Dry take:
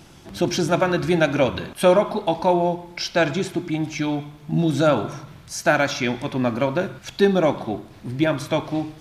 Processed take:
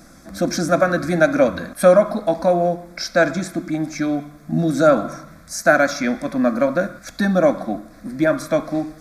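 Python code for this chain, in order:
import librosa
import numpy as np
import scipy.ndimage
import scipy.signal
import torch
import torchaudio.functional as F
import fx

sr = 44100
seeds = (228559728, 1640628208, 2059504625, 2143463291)

y = fx.peak_eq(x, sr, hz=840.0, db=4.0, octaves=0.26)
y = fx.fixed_phaser(y, sr, hz=590.0, stages=8)
y = F.gain(torch.from_numpy(y), 5.0).numpy()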